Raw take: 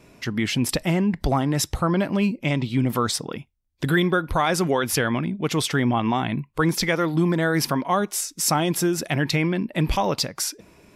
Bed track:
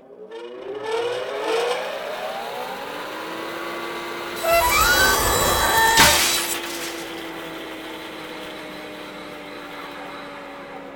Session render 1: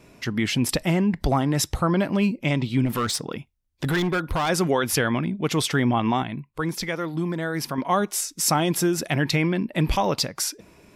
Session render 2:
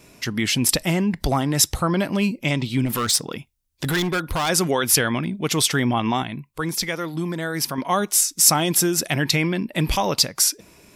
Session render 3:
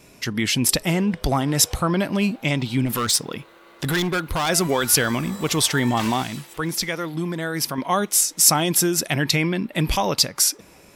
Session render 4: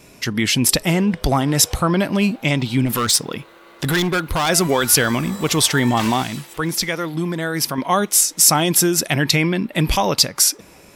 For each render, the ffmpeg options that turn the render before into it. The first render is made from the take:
-filter_complex "[0:a]asplit=3[s0][s1][s2];[s0]afade=t=out:st=2.85:d=0.02[s3];[s1]volume=9.44,asoftclip=hard,volume=0.106,afade=t=in:st=2.85:d=0.02,afade=t=out:st=4.48:d=0.02[s4];[s2]afade=t=in:st=4.48:d=0.02[s5];[s3][s4][s5]amix=inputs=3:normalize=0,asplit=3[s6][s7][s8];[s6]atrim=end=6.232[s9];[s7]atrim=start=6.228:end=7.782,asetpts=PTS-STARTPTS,volume=0.501[s10];[s8]atrim=start=7.778[s11];[s9][s10]acrossfade=d=0.004:c1=hsin:c2=hsin[s12];[s12][s11]acrossfade=d=0.004:c1=hsin:c2=hsin"
-af "highshelf=f=3600:g=10.5"
-filter_complex "[1:a]volume=0.1[s0];[0:a][s0]amix=inputs=2:normalize=0"
-af "volume=1.5,alimiter=limit=0.891:level=0:latency=1"

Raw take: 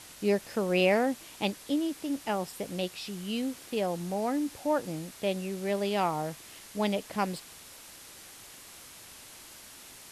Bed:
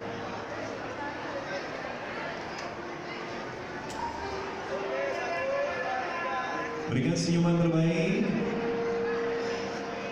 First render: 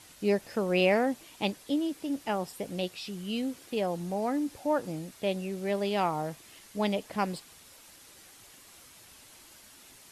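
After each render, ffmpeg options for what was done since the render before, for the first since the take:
-af "afftdn=nr=6:nf=-50"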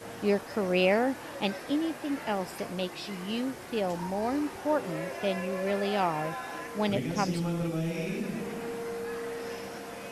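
-filter_complex "[1:a]volume=0.501[s0];[0:a][s0]amix=inputs=2:normalize=0"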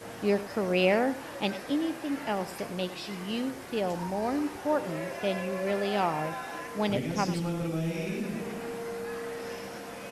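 -af "aecho=1:1:98:0.188"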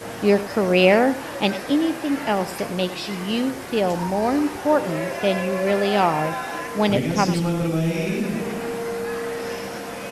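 -af "volume=2.82"

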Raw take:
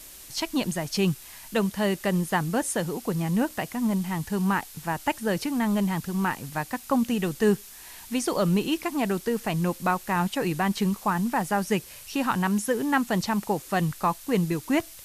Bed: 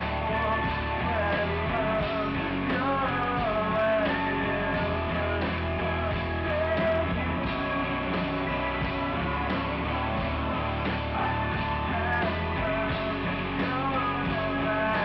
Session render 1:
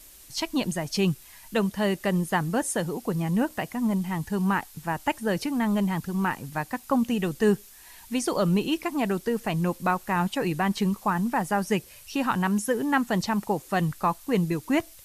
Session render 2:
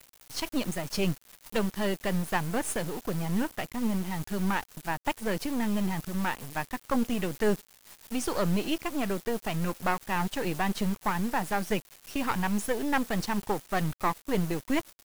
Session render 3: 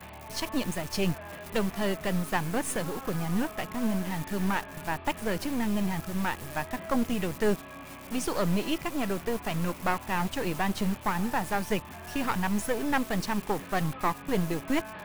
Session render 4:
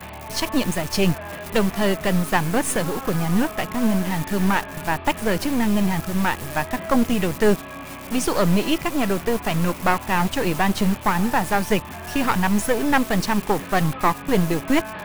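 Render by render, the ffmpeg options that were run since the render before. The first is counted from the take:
-af "afftdn=nr=6:nf=-45"
-af "aeval=exprs='if(lt(val(0),0),0.251*val(0),val(0))':c=same,acrusher=bits=6:mix=0:aa=0.000001"
-filter_complex "[1:a]volume=0.158[s0];[0:a][s0]amix=inputs=2:normalize=0"
-af "volume=2.66"

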